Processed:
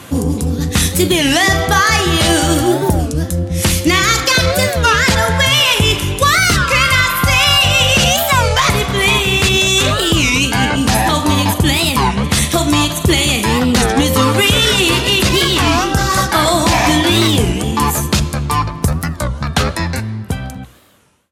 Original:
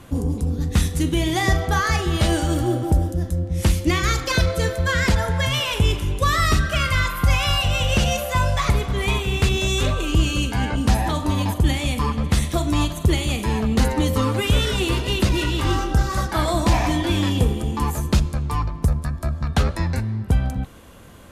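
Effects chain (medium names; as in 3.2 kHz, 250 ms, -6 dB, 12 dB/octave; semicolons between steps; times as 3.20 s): fade out at the end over 2.01 s; high-pass 91 Hz 12 dB/octave; tilt shelf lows -3.5 dB, about 1.2 kHz; hum notches 60/120 Hz; loudness maximiser +13 dB; warped record 33 1/3 rpm, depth 250 cents; trim -1 dB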